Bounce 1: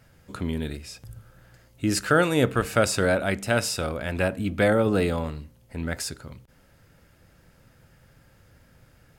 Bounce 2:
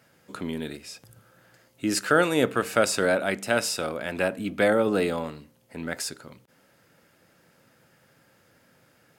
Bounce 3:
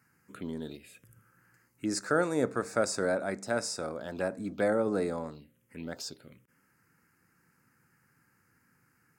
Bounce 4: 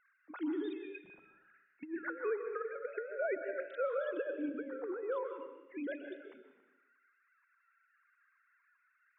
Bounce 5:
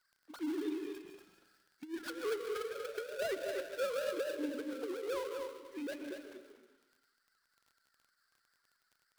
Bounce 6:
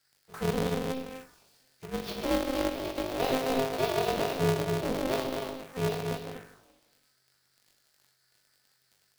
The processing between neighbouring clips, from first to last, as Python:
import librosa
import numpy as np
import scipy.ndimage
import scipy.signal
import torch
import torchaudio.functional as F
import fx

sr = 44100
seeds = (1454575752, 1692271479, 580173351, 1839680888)

y1 = scipy.signal.sosfilt(scipy.signal.butter(2, 210.0, 'highpass', fs=sr, output='sos'), x)
y2 = fx.env_phaser(y1, sr, low_hz=580.0, high_hz=3000.0, full_db=-26.0)
y2 = y2 * 10.0 ** (-5.5 / 20.0)
y3 = fx.sine_speech(y2, sr)
y3 = fx.over_compress(y3, sr, threshold_db=-34.0, ratio=-0.5)
y3 = fx.rev_plate(y3, sr, seeds[0], rt60_s=0.96, hf_ratio=1.0, predelay_ms=115, drr_db=6.5)
y3 = y3 * 10.0 ** (-2.5 / 20.0)
y4 = fx.dead_time(y3, sr, dead_ms=0.18)
y4 = y4 + 10.0 ** (-6.5 / 20.0) * np.pad(y4, (int(240 * sr / 1000.0), 0))[:len(y4)]
y4 = fx.dmg_crackle(y4, sr, seeds[1], per_s=22.0, level_db=-52.0)
y4 = y4 * 10.0 ** (-1.0 / 20.0)
y5 = fx.room_flutter(y4, sr, wall_m=3.5, rt60_s=0.45)
y5 = fx.env_phaser(y5, sr, low_hz=190.0, high_hz=1500.0, full_db=-39.5)
y5 = y5 * np.sign(np.sin(2.0 * np.pi * 130.0 * np.arange(len(y5)) / sr))
y5 = y5 * 10.0 ** (7.0 / 20.0)